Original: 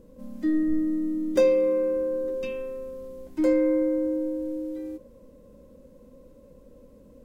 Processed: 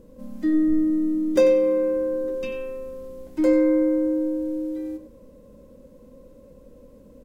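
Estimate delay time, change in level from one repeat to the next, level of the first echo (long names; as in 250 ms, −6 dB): 93 ms, −15.0 dB, −12.5 dB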